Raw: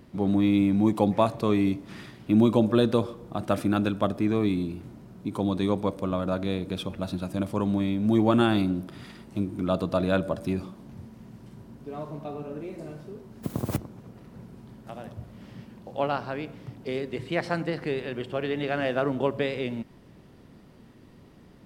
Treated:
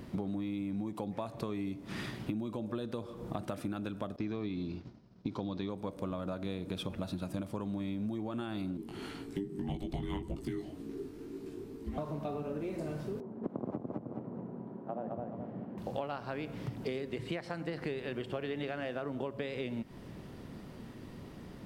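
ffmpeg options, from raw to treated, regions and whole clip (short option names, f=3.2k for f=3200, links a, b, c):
-filter_complex "[0:a]asettb=1/sr,asplit=3[a][b][c];[a]atrim=end=4.164[d];[b]atrim=start=4.16:end=5.7,asetpts=PTS-STARTPTS,afade=t=in:d=0.004:c=qsin,afade=t=out:st=1.536:d=0.004:c=qsin,agate=range=-33dB:threshold=-35dB:ratio=3:release=100:detection=peak,highshelf=f=7.2k:t=q:w=3:g=-13,acrossover=split=4000[e][f];[f]acompressor=threshold=-50dB:ratio=4:attack=1:release=60[g];[e][g]amix=inputs=2:normalize=0[h];[c]atrim=start=5.696[i];[d][h]acrossfade=d=0.004:c1=hsin:c2=qsin[j];[j][i]acrossfade=d=0.004:c1=qsin:c2=hsin,asettb=1/sr,asplit=3[k][l][m];[k]atrim=end=8.774[n];[l]atrim=start=8.77:end=11.98,asetpts=PTS-STARTPTS,afade=t=in:d=0.004:c=qsin,afade=t=out:st=3.206:d=0.004:c=qsin,flanger=delay=18:depth=2.1:speed=1.9,afreqshift=-500[o];[m]atrim=start=11.976[p];[n][o]acrossfade=d=0.004:c1=hsin:c2=qsin[q];[q][p]acrossfade=d=0.004:c1=qsin:c2=hsin,asettb=1/sr,asplit=3[r][s][t];[r]atrim=end=13.204[u];[s]atrim=start=13.2:end=15.78,asetpts=PTS-STARTPTS,afade=t=in:d=0.004:c=qsin,afade=t=out:st=2.576:d=0.004:c=qsin,asuperpass=centerf=420:order=4:qfactor=0.57,aecho=1:1:213|426|639|852:0.631|0.202|0.0646|0.0207,atrim=end_sample=113778[v];[t]atrim=start=15.776[w];[u][v]acrossfade=d=0.004:c1=hsin:c2=qsin[x];[x][w]acrossfade=d=0.004:c1=qsin:c2=hsin,alimiter=limit=-17.5dB:level=0:latency=1:release=400,acompressor=threshold=-38dB:ratio=10,volume=4.5dB"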